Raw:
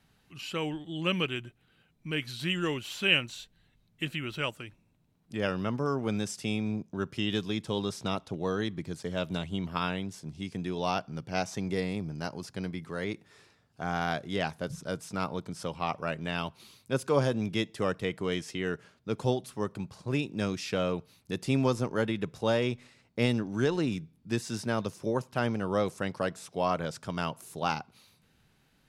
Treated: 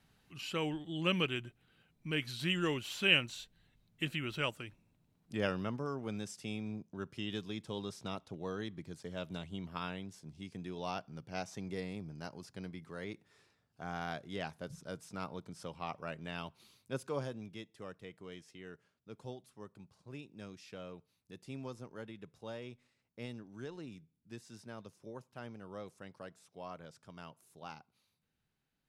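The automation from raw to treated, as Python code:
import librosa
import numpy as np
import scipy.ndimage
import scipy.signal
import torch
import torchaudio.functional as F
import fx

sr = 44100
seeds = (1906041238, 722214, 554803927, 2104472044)

y = fx.gain(x, sr, db=fx.line((5.4, -3.0), (5.91, -9.5), (16.95, -9.5), (17.63, -18.0)))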